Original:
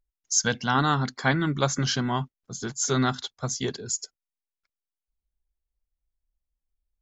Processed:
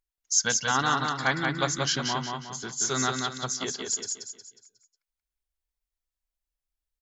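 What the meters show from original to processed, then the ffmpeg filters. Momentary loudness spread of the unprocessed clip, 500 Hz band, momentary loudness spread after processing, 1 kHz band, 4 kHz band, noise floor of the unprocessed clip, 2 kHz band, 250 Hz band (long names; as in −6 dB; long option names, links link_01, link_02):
10 LU, −3.0 dB, 11 LU, 0.0 dB, +1.5 dB, below −85 dBFS, +1.0 dB, −6.0 dB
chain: -af "lowshelf=frequency=460:gain=-10,aecho=1:1:181|362|543|724|905:0.631|0.252|0.101|0.0404|0.0162"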